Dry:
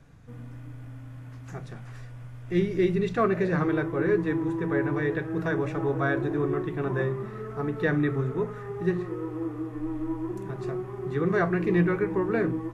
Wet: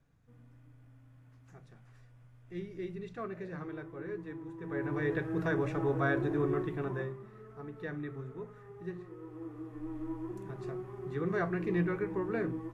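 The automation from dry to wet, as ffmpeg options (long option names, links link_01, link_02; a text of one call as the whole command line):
ffmpeg -i in.wav -af "volume=3dB,afade=type=in:start_time=4.57:duration=0.59:silence=0.237137,afade=type=out:start_time=6.61:duration=0.59:silence=0.281838,afade=type=in:start_time=9.15:duration=0.9:silence=0.446684" out.wav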